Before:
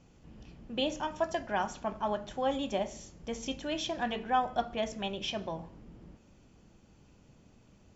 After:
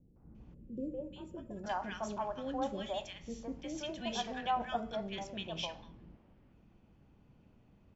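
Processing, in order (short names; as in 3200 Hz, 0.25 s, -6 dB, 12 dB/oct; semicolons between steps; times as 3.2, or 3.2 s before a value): three bands offset in time lows, mids, highs 0.16/0.35 s, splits 470/1500 Hz; spectral gain 0.54–1.64, 590–6900 Hz -19 dB; low-pass opened by the level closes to 2200 Hz, open at -29 dBFS; gain -3 dB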